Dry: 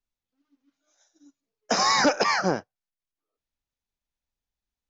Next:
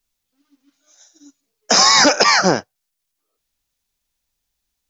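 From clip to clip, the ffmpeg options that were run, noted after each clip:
ffmpeg -i in.wav -af "highshelf=frequency=3100:gain=10,alimiter=level_in=9.5dB:limit=-1dB:release=50:level=0:latency=1,volume=-1dB" out.wav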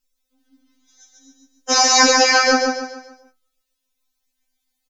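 ffmpeg -i in.wav -filter_complex "[0:a]flanger=delay=5.6:depth=2.4:regen=79:speed=0.54:shape=sinusoidal,asplit=2[link_01][link_02];[link_02]aecho=0:1:143|286|429|572|715:0.668|0.261|0.102|0.0396|0.0155[link_03];[link_01][link_03]amix=inputs=2:normalize=0,afftfilt=real='re*3.46*eq(mod(b,12),0)':imag='im*3.46*eq(mod(b,12),0)':win_size=2048:overlap=0.75,volume=4.5dB" out.wav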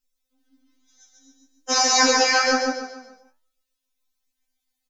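ffmpeg -i in.wav -af "flanger=delay=7:depth=7.6:regen=80:speed=1.1:shape=triangular" out.wav

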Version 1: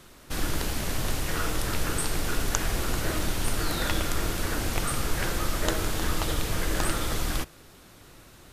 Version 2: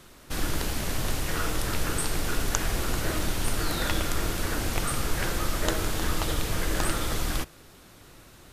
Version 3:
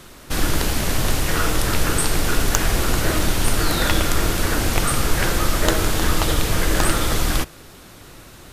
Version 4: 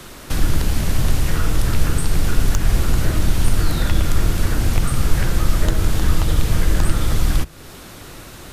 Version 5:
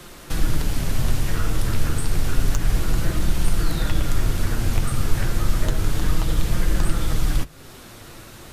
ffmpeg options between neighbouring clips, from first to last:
ffmpeg -i in.wav -af anull out.wav
ffmpeg -i in.wav -af "asoftclip=type=hard:threshold=-10dB,volume=8.5dB" out.wav
ffmpeg -i in.wav -filter_complex "[0:a]acrossover=split=200[link_01][link_02];[link_02]acompressor=threshold=-37dB:ratio=2.5[link_03];[link_01][link_03]amix=inputs=2:normalize=0,volume=5dB" out.wav
ffmpeg -i in.wav -af "flanger=delay=5.7:depth=3.3:regen=-44:speed=0.3:shape=sinusoidal" out.wav

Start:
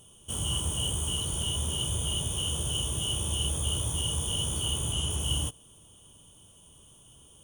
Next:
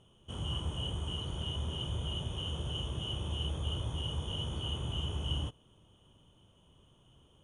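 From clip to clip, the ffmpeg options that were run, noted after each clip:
ffmpeg -i in.wav -af "lowpass=2800,volume=-3.5dB" out.wav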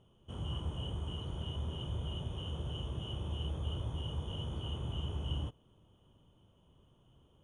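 ffmpeg -i in.wav -af "highshelf=frequency=2200:gain=-9.5,volume=-1.5dB" out.wav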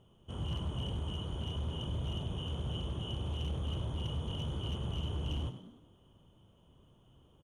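ffmpeg -i in.wav -filter_complex "[0:a]asoftclip=type=hard:threshold=-33.5dB,asplit=6[link_01][link_02][link_03][link_04][link_05][link_06];[link_02]adelay=99,afreqshift=54,volume=-11.5dB[link_07];[link_03]adelay=198,afreqshift=108,volume=-18.2dB[link_08];[link_04]adelay=297,afreqshift=162,volume=-25dB[link_09];[link_05]adelay=396,afreqshift=216,volume=-31.7dB[link_10];[link_06]adelay=495,afreqshift=270,volume=-38.5dB[link_11];[link_01][link_07][link_08][link_09][link_10][link_11]amix=inputs=6:normalize=0,volume=2dB" out.wav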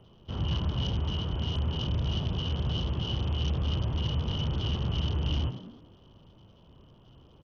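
ffmpeg -i in.wav -filter_complex "[0:a]acrossover=split=290|1000|4400[link_01][link_02][link_03][link_04];[link_02]aeval=exprs='clip(val(0),-1,0.00119)':channel_layout=same[link_05];[link_01][link_05][link_03][link_04]amix=inputs=4:normalize=0,volume=7.5dB" -ar 48000 -c:a sbc -b:a 64k out.sbc

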